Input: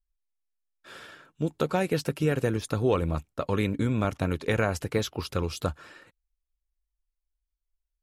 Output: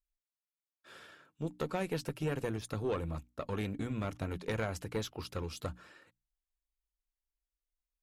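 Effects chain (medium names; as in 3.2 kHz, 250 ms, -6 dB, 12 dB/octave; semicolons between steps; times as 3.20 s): hum notches 60/120/180/240/300 Hz; valve stage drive 17 dB, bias 0.45; trim -6.5 dB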